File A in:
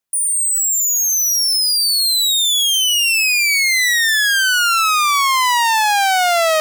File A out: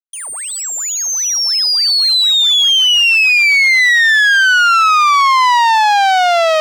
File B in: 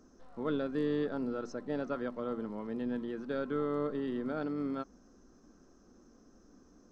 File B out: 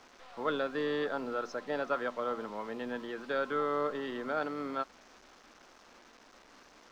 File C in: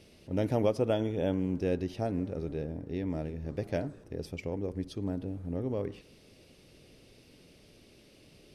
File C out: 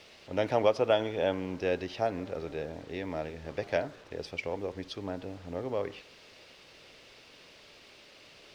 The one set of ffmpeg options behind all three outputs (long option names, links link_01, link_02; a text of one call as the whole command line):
ffmpeg -i in.wav -filter_complex "[0:a]volume=16dB,asoftclip=hard,volume=-16dB,acrusher=bits=9:mix=0:aa=0.000001,acrossover=split=550 5600:gain=0.158 1 0.0794[link_01][link_02][link_03];[link_01][link_02][link_03]amix=inputs=3:normalize=0,volume=8.5dB" out.wav